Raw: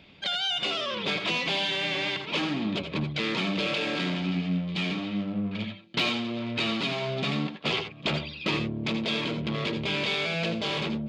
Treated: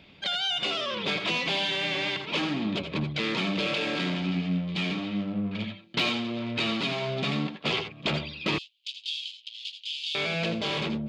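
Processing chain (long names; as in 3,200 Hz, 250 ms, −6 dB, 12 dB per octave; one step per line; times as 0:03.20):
0:08.58–0:10.15: Chebyshev high-pass filter 2,900 Hz, order 5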